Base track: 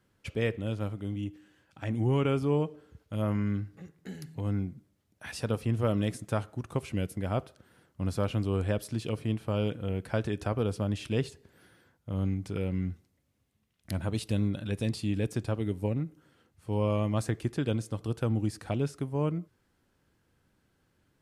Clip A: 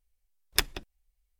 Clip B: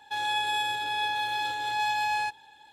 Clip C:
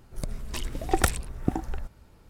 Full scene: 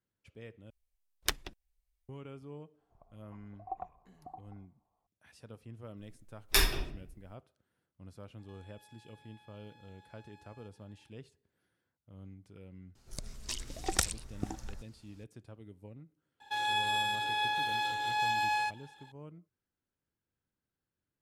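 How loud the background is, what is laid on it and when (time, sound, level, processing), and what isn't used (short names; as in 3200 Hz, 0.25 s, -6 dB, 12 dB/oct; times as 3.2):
base track -20 dB
0.7 replace with A -6 dB + Doppler distortion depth 0.45 ms
2.78 add C -7 dB + vocal tract filter a
5.96 add A -6.5 dB + shoebox room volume 94 m³, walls mixed, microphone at 2 m
8.38 add B -18 dB + compressor 12:1, threshold -42 dBFS
12.95 add C -11.5 dB + bell 5800 Hz +14.5 dB 1.9 oct
16.4 add B -3 dB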